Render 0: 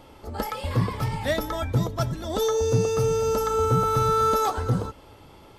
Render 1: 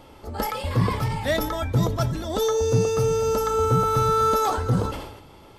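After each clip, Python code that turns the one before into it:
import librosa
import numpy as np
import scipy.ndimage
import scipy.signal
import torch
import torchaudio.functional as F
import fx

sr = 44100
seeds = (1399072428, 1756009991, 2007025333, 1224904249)

y = fx.sustainer(x, sr, db_per_s=58.0)
y = y * librosa.db_to_amplitude(1.0)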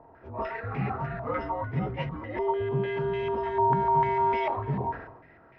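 y = fx.partial_stretch(x, sr, pct=79)
y = fx.filter_held_lowpass(y, sr, hz=6.7, low_hz=950.0, high_hz=2200.0)
y = y * librosa.db_to_amplitude(-7.0)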